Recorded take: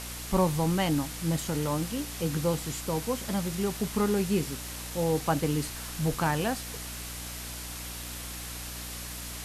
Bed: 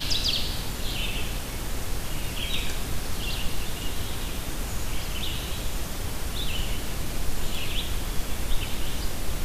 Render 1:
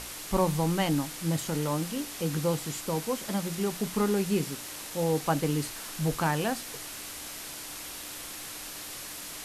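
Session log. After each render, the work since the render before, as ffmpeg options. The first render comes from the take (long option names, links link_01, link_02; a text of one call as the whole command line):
ffmpeg -i in.wav -af "bandreject=frequency=60:width_type=h:width=6,bandreject=frequency=120:width_type=h:width=6,bandreject=frequency=180:width_type=h:width=6,bandreject=frequency=240:width_type=h:width=6" out.wav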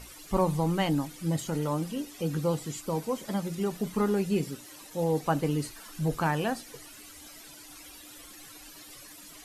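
ffmpeg -i in.wav -af "afftdn=noise_reduction=14:noise_floor=-41" out.wav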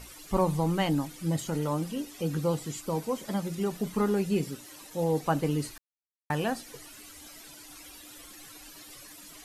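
ffmpeg -i in.wav -filter_complex "[0:a]asplit=3[link_01][link_02][link_03];[link_01]atrim=end=5.78,asetpts=PTS-STARTPTS,afade=type=out:start_time=5.776:duration=0.004:curve=hsin[link_04];[link_02]atrim=start=5.78:end=6.3,asetpts=PTS-STARTPTS,volume=0[link_05];[link_03]atrim=start=6.3,asetpts=PTS-STARTPTS,afade=type=in:duration=0.004:curve=hsin[link_06];[link_04][link_05][link_06]concat=n=3:v=0:a=1" out.wav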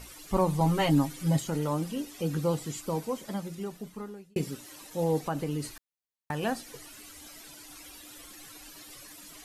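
ffmpeg -i in.wav -filter_complex "[0:a]asettb=1/sr,asplit=3[link_01][link_02][link_03];[link_01]atrim=end=0.604[link_04];[link_02]atrim=start=0.6:end=1.39,asetpts=PTS-STARTPTS,afade=type=in:duration=0.004:curve=qsin,afade=type=out:start_time=0.786:duration=0.004:curve=qsin,aecho=1:1:7.4:0.93,atrim=end_sample=34839[link_05];[link_03]atrim=start=1.386[link_06];[link_04][link_05]acrossfade=duration=0.004:curve1=hsin:curve2=qsin[link_07];[link_07][link_06]acrossfade=duration=0.004:curve1=qsin:curve2=hsin,asettb=1/sr,asplit=3[link_08][link_09][link_10];[link_08]atrim=end=5.234[link_11];[link_09]atrim=start=5.23:end=6.43,asetpts=PTS-STARTPTS,afade=type=in:duration=0.004:curve=qsin,afade=type=out:start_time=1.196:duration=0.004:curve=qsin,acompressor=threshold=-30dB:ratio=2:attack=3.2:release=140:knee=1:detection=peak[link_12];[link_10]atrim=start=6.426[link_13];[link_11][link_12]acrossfade=duration=0.004:curve1=hsin:curve2=qsin[link_14];[link_14][link_13]acrossfade=duration=0.004:curve1=qsin:curve2=hsin,asplit=2[link_15][link_16];[link_15]atrim=end=4.36,asetpts=PTS-STARTPTS,afade=type=out:start_time=2.84:duration=1.52[link_17];[link_16]atrim=start=4.36,asetpts=PTS-STARTPTS,afade=type=in:duration=0.004:curve=hsin[link_18];[link_17][link_18]concat=n=2:v=0:a=1" out.wav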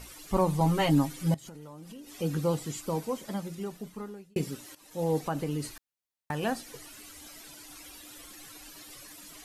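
ffmpeg -i in.wav -filter_complex "[0:a]asettb=1/sr,asplit=3[link_01][link_02][link_03];[link_01]atrim=end=1.344[link_04];[link_02]atrim=start=1.34:end=2.16,asetpts=PTS-STARTPTS,afade=type=in:duration=0.004:curve=qsin,afade=type=out:start_time=0.816:duration=0.004:curve=qsin,acompressor=threshold=-42dB:ratio=10:attack=3.2:release=140:knee=1:detection=peak[link_05];[link_03]atrim=start=2.156[link_06];[link_04][link_05]acrossfade=duration=0.004:curve1=hsin:curve2=qsin[link_07];[link_07][link_06]acrossfade=duration=0.004:curve1=qsin:curve2=hsin,asplit=2[link_08][link_09];[link_08]atrim=end=4.75,asetpts=PTS-STARTPTS,afade=type=out:start_time=4.746:duration=0.004:curve=hsin:silence=0.16788[link_10];[link_09]atrim=start=4.75,asetpts=PTS-STARTPTS,afade=type=in:duration=0.5:curve=qsin:silence=0.16788[link_11];[link_10][link_11]concat=n=2:v=0:a=1" out.wav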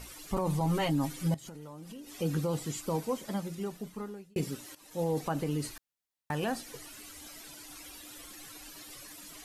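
ffmpeg -i in.wav -af "alimiter=limit=-22dB:level=0:latency=1:release=17" out.wav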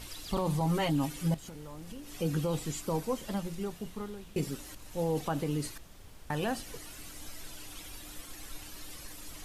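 ffmpeg -i in.wav -i bed.wav -filter_complex "[1:a]volume=-21.5dB[link_01];[0:a][link_01]amix=inputs=2:normalize=0" out.wav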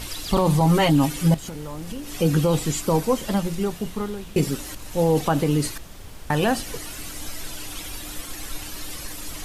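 ffmpeg -i in.wav -af "volume=11.5dB" out.wav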